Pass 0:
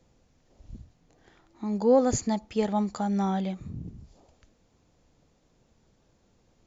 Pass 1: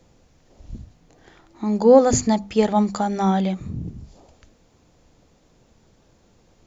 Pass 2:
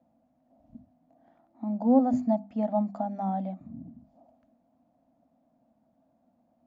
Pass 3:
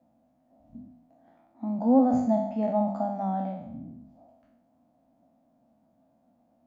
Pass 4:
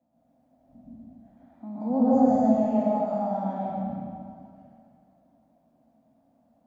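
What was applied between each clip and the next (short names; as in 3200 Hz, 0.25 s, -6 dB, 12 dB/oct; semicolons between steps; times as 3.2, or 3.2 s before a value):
notches 50/100/150/200/250 Hz; gain +8.5 dB
double band-pass 410 Hz, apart 1.4 oct
spectral trails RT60 0.78 s
plate-style reverb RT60 2.3 s, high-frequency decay 0.8×, pre-delay 0.105 s, DRR -8.5 dB; gain -7.5 dB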